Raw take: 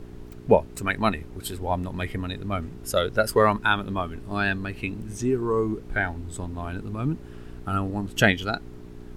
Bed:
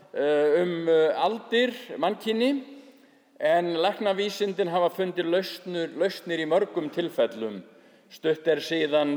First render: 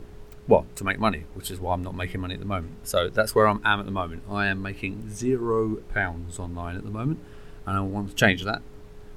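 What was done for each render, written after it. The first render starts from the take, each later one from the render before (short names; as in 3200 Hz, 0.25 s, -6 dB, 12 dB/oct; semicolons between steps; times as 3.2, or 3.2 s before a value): de-hum 60 Hz, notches 6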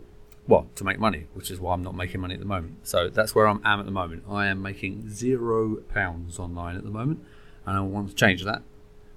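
noise print and reduce 6 dB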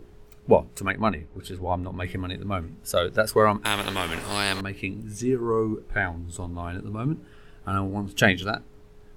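0.9–2.05 LPF 2300 Hz 6 dB/oct; 3.65–4.61 spectral compressor 4:1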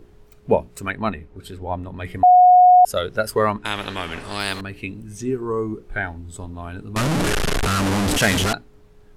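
2.23–2.85 bleep 726 Hz -7 dBFS; 3.51–4.4 air absorption 54 m; 6.96–8.53 delta modulation 64 kbps, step -13.5 dBFS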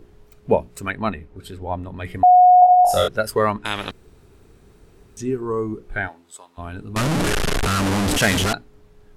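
2.6–3.08 flutter echo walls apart 3.6 m, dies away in 0.63 s; 3.91–5.17 room tone; 6.07–6.57 HPF 400 Hz -> 1200 Hz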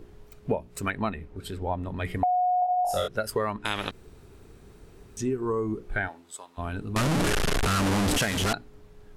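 compressor 6:1, threshold -24 dBFS, peak gain reduction 15 dB; ending taper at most 460 dB/s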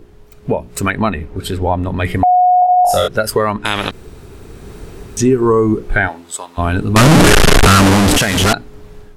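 in parallel at -0.5 dB: limiter -21.5 dBFS, peak gain reduction 9.5 dB; on the sum: AGC gain up to 13 dB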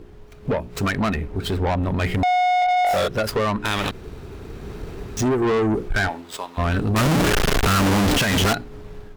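median filter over 5 samples; tube stage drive 17 dB, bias 0.2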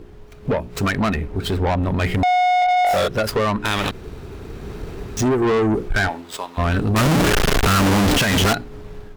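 gain +2 dB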